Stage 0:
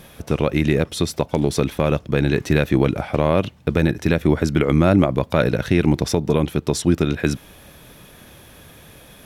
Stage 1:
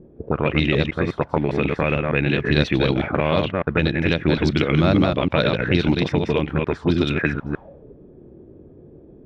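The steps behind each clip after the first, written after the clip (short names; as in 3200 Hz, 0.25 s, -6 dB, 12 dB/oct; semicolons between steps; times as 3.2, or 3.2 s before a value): reverse delay 0.151 s, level -2.5 dB; envelope low-pass 340–4200 Hz up, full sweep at -11 dBFS; gain -3.5 dB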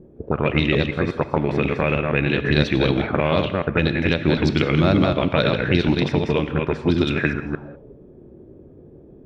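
non-linear reverb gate 0.22 s flat, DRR 11.5 dB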